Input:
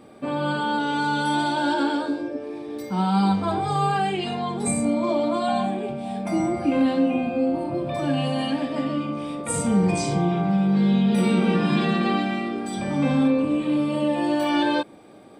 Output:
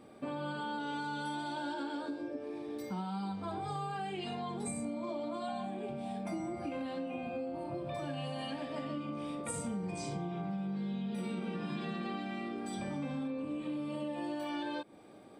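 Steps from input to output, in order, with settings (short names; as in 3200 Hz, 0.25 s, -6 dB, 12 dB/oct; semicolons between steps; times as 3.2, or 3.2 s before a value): 6.64–8.91 bell 260 Hz -5.5 dB 0.73 oct; compressor, threshold -28 dBFS, peak gain reduction 12 dB; gain -7.5 dB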